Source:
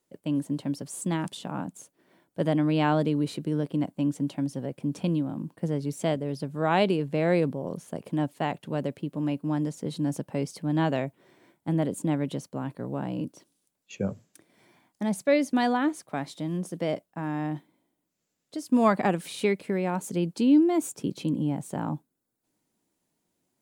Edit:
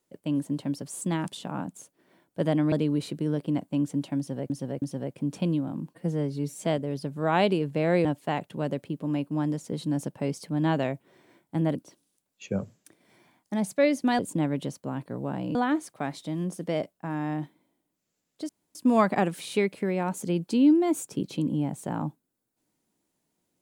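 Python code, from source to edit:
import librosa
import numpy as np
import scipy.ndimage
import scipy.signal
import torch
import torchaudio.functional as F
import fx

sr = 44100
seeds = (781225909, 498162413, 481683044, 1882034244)

y = fx.edit(x, sr, fx.cut(start_s=2.72, length_s=0.26),
    fx.repeat(start_s=4.44, length_s=0.32, count=3),
    fx.stretch_span(start_s=5.56, length_s=0.48, factor=1.5),
    fx.cut(start_s=7.43, length_s=0.75),
    fx.move(start_s=11.88, length_s=1.36, to_s=15.68),
    fx.insert_room_tone(at_s=18.62, length_s=0.26), tone=tone)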